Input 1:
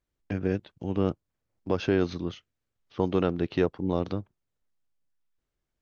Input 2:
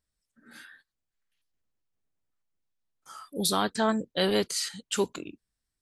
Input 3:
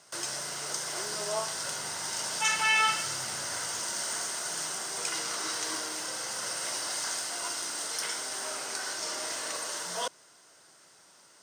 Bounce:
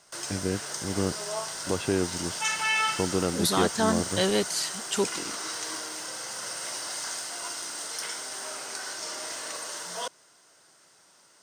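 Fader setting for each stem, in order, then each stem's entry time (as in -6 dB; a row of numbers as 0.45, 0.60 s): -2.0, +0.5, -1.0 dB; 0.00, 0.00, 0.00 s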